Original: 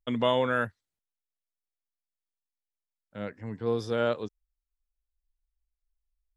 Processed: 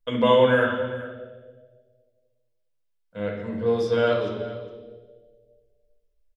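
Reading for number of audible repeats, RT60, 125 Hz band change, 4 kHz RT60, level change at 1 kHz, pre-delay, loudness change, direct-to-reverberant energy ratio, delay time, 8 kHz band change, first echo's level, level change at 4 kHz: 1, 1.7 s, +6.0 dB, 1.5 s, +6.0 dB, 4 ms, +6.5 dB, −3.0 dB, 412 ms, can't be measured, −16.5 dB, +5.5 dB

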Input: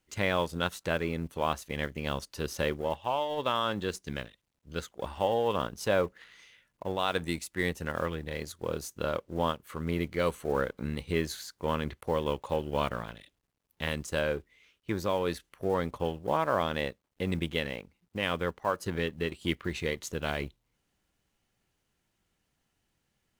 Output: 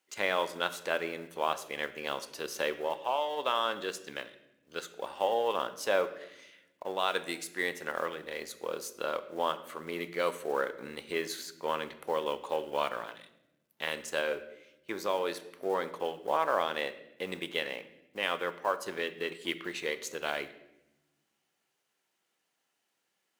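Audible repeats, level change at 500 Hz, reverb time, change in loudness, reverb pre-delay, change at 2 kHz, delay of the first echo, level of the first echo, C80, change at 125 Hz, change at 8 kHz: no echo audible, −1.5 dB, 0.90 s, −1.5 dB, 3 ms, +0.5 dB, no echo audible, no echo audible, 16.0 dB, −18.0 dB, 0.0 dB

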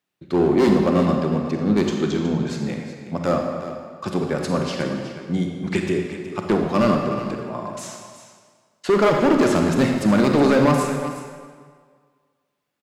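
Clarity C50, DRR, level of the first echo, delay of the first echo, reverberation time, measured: 3.0 dB, 2.0 dB, −12.5 dB, 368 ms, 1.7 s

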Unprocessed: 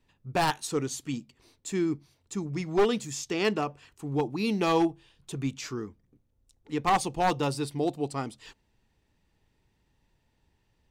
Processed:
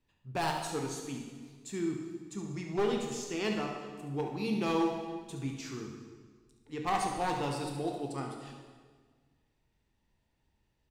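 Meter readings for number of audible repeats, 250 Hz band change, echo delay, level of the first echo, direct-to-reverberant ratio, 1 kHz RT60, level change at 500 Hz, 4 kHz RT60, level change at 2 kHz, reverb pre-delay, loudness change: 1, −5.0 dB, 71 ms, −9.0 dB, 1.0 dB, 1.5 s, −5.5 dB, 1.4 s, −5.5 dB, 13 ms, −5.5 dB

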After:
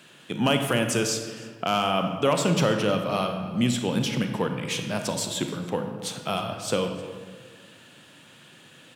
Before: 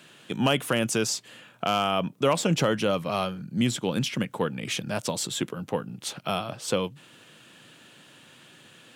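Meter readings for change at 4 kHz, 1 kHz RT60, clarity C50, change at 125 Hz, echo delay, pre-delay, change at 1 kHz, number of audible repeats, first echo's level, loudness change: +1.0 dB, 1.5 s, 6.0 dB, +2.0 dB, 309 ms, 27 ms, +1.5 dB, 1, −22.0 dB, +1.5 dB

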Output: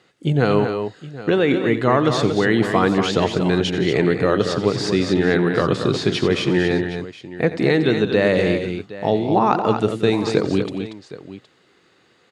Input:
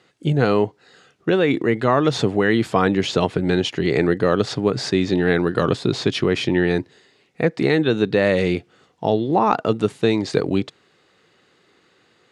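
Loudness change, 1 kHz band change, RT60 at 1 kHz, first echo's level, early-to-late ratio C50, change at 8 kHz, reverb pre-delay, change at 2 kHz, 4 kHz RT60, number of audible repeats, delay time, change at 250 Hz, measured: +1.0 dB, +1.0 dB, no reverb audible, −14.5 dB, no reverb audible, +1.0 dB, no reverb audible, +1.0 dB, no reverb audible, 4, 88 ms, +1.0 dB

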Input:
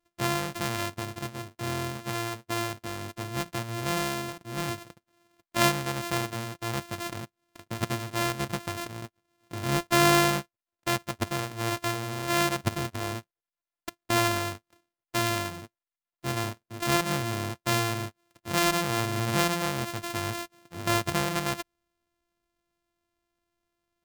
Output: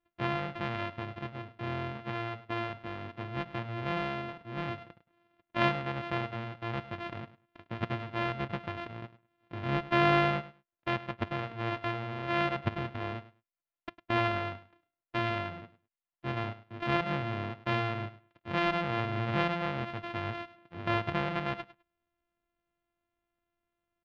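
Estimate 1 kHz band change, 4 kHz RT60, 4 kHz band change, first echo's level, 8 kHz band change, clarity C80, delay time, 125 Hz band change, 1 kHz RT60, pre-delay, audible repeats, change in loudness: −3.5 dB, no reverb audible, −9.0 dB, −16.0 dB, below −30 dB, no reverb audible, 103 ms, −3.5 dB, no reverb audible, no reverb audible, 2, −4.5 dB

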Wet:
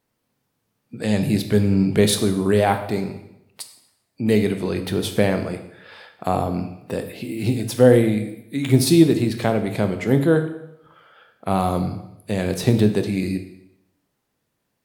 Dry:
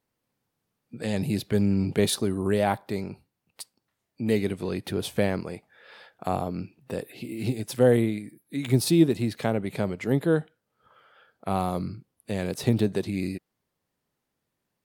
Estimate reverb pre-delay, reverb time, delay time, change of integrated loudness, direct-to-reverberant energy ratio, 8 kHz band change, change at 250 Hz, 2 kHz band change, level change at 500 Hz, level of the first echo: 12 ms, 0.85 s, no echo audible, +6.5 dB, 7.0 dB, +6.5 dB, +6.5 dB, +6.5 dB, +6.5 dB, no echo audible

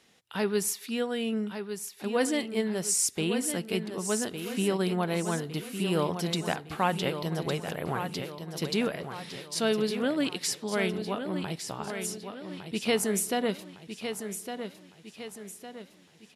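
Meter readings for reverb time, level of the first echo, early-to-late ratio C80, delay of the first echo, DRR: no reverb audible, −8.5 dB, no reverb audible, 1,158 ms, no reverb audible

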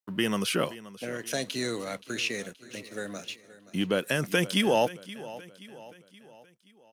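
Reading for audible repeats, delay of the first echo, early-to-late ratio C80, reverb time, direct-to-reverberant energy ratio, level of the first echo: 3, 525 ms, no reverb audible, no reverb audible, no reverb audible, −17.0 dB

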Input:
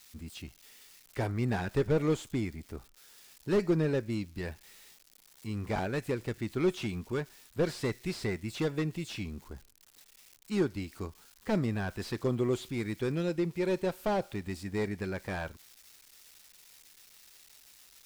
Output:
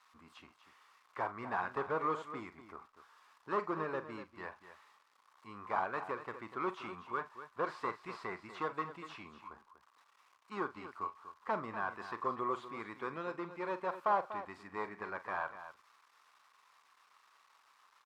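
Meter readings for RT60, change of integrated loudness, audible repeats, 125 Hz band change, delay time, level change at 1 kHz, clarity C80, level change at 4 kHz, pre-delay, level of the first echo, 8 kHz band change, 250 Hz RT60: no reverb audible, −6.5 dB, 2, −20.5 dB, 44 ms, +5.5 dB, no reverb audible, −12.5 dB, no reverb audible, −13.0 dB, below −15 dB, no reverb audible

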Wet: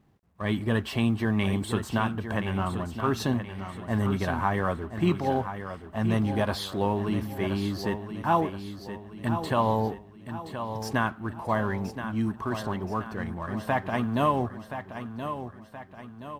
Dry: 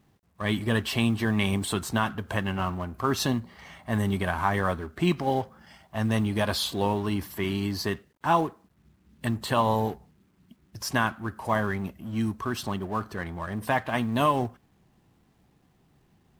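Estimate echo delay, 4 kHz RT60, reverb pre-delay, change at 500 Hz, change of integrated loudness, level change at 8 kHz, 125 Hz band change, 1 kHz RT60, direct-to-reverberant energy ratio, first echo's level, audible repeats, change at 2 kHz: 1,024 ms, no reverb audible, no reverb audible, 0.0 dB, −1.0 dB, −7.0 dB, +0.5 dB, no reverb audible, no reverb audible, −9.5 dB, 4, −2.5 dB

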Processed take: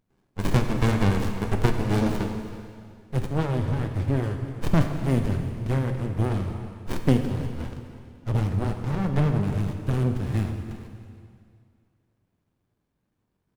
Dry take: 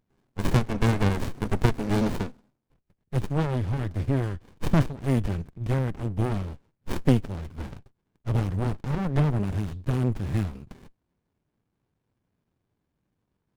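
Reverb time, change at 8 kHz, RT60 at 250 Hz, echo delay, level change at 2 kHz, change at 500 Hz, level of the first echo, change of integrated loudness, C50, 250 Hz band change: 2.3 s, can't be measured, 2.3 s, 324 ms, +1.0 dB, +1.5 dB, −17.0 dB, +1.0 dB, 6.0 dB, +1.5 dB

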